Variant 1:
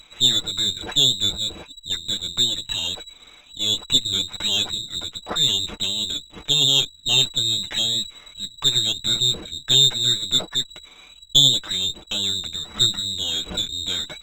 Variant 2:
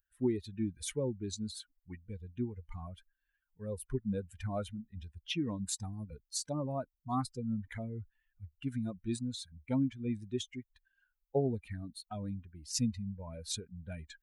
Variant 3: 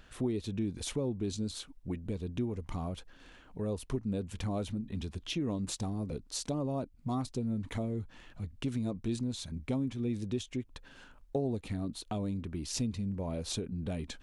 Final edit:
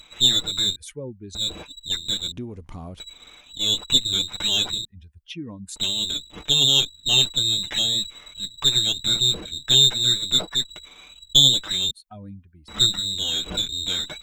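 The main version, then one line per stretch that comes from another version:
1
0.76–1.35 s: from 2
2.32–3.00 s: from 3
4.85–5.76 s: from 2
11.91–12.68 s: from 2

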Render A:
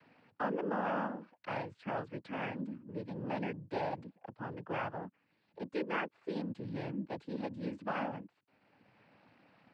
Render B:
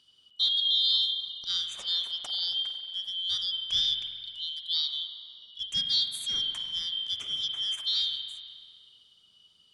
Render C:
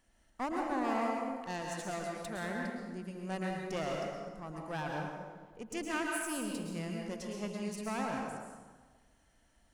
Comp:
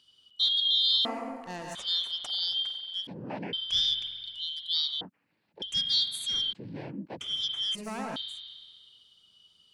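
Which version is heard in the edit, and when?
B
1.05–1.75 s: from C
3.07–3.53 s: from A
5.01–5.62 s: from A
6.53–7.21 s: from A
7.75–8.16 s: from C

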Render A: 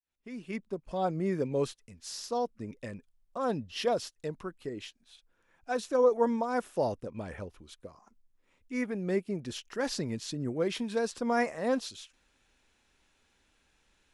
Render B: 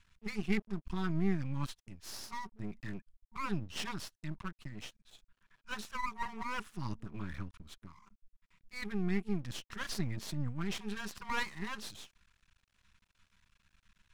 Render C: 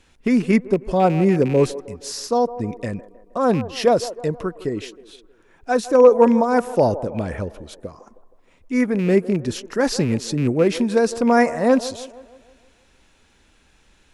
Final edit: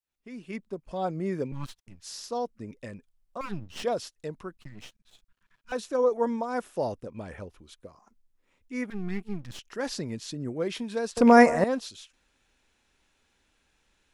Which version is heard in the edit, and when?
A
1.52–2.02 s: from B
3.41–3.83 s: from B
4.57–5.72 s: from B
8.90–9.59 s: from B
11.17–11.64 s: from C

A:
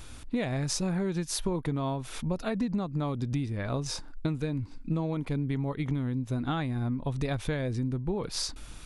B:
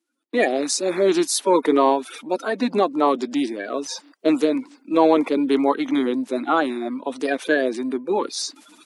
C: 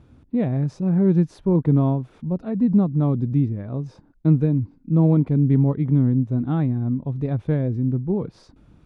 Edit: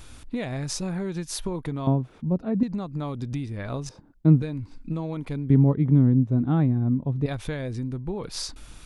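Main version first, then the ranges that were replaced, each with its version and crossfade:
A
1.87–2.63 s: from C
3.89–4.42 s: from C
5.50–7.26 s: from C
not used: B

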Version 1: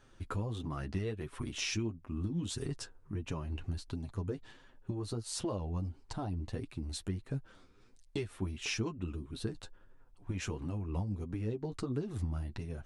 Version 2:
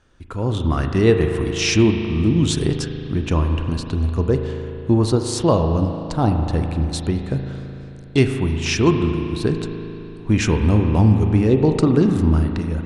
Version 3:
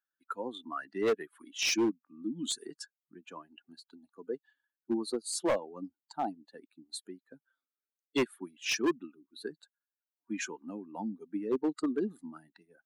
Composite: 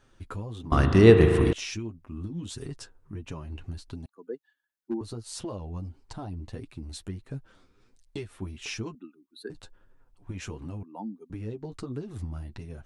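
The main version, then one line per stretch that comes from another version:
1
0.72–1.53 s: from 2
4.06–5.01 s: from 3
8.95–9.50 s: from 3
10.83–11.30 s: from 3

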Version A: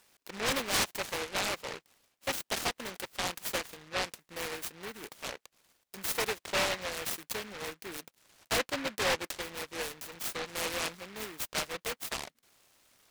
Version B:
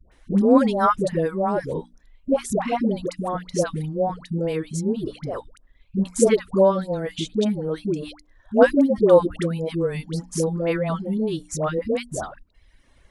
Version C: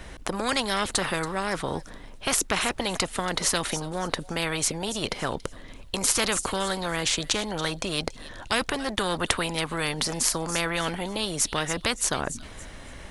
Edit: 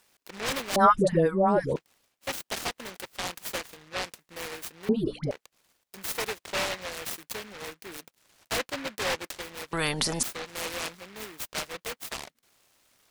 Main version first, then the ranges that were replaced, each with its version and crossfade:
A
0.76–1.76 s: from B
4.89–5.31 s: from B
9.73–10.23 s: from C

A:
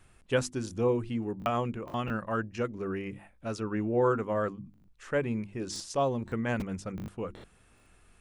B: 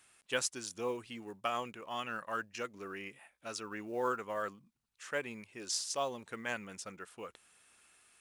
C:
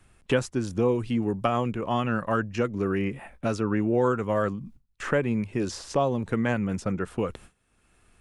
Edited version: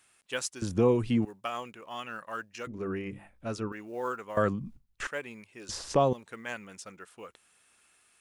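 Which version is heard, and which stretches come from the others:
B
0.62–1.25 s: from C
2.67–3.72 s: from A
4.37–5.07 s: from C
5.69–6.13 s: from C

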